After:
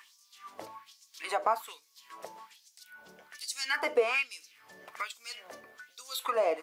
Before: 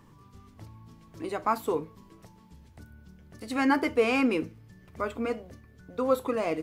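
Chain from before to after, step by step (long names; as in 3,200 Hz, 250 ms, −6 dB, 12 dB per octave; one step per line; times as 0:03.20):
auto-filter high-pass sine 1.2 Hz 530–6,000 Hz
downward compressor 2 to 1, threshold −42 dBFS, peak gain reduction 15 dB
level +8 dB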